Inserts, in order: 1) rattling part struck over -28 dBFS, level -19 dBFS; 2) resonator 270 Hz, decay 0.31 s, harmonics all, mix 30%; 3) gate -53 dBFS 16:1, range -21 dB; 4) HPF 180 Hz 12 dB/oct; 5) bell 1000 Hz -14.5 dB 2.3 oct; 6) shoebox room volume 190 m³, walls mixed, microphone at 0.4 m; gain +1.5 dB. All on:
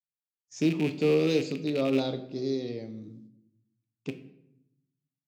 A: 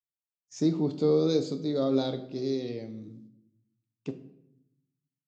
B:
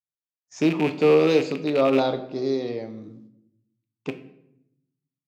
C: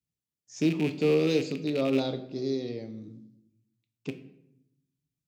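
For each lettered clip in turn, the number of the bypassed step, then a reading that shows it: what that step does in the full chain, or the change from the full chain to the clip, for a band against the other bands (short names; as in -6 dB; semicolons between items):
1, 2 kHz band -13.0 dB; 5, 1 kHz band +9.0 dB; 3, momentary loudness spread change +1 LU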